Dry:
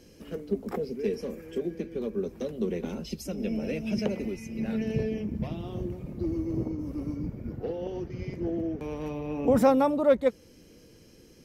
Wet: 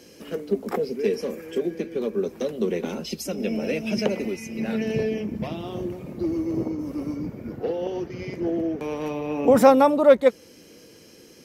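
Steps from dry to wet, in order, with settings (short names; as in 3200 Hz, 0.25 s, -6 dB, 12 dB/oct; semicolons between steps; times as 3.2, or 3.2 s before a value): HPF 350 Hz 6 dB/oct; gain +8.5 dB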